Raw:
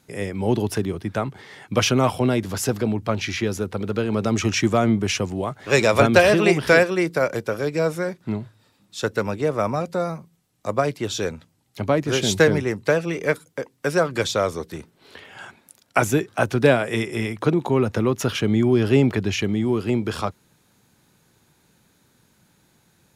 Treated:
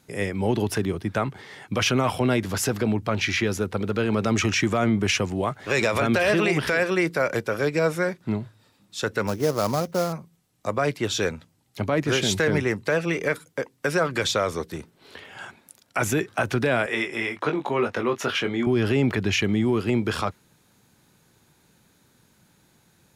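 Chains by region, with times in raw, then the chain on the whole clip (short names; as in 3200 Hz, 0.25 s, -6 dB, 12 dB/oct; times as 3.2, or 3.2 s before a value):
9.27–10.13 high shelf 2000 Hz -12 dB + sample-rate reducer 5800 Hz, jitter 20%
16.86–18.67 HPF 530 Hz 6 dB/oct + high shelf 6100 Hz -12 dB + doubler 21 ms -6 dB
whole clip: dynamic EQ 1900 Hz, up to +5 dB, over -37 dBFS, Q 0.85; limiter -12.5 dBFS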